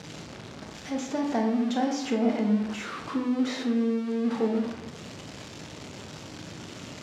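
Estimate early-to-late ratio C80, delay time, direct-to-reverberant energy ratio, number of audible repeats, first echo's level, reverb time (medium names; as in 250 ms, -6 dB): 8.5 dB, no echo, 2.0 dB, no echo, no echo, 0.85 s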